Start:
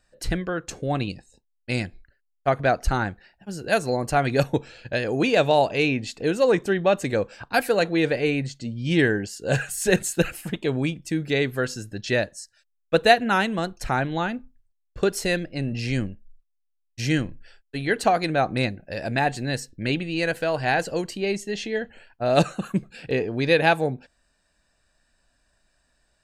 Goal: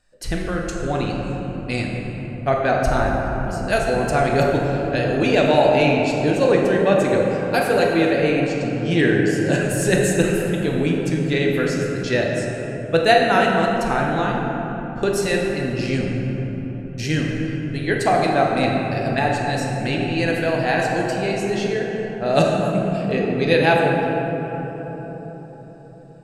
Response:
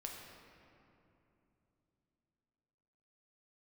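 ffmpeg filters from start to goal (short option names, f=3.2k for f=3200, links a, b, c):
-filter_complex "[1:a]atrim=start_sample=2205,asetrate=24696,aresample=44100[a];[0:a][a]afir=irnorm=-1:irlink=0,volume=2.5dB"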